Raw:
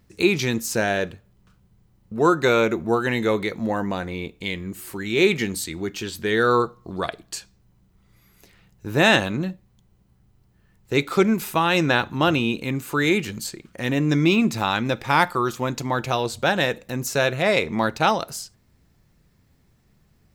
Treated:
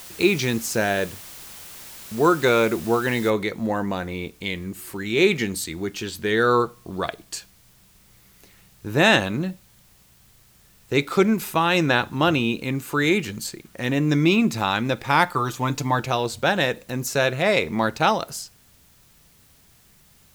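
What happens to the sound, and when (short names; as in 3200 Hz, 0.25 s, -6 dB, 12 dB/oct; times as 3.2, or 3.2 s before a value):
3.3 noise floor step -41 dB -57 dB
15.34–16 comb 6.8 ms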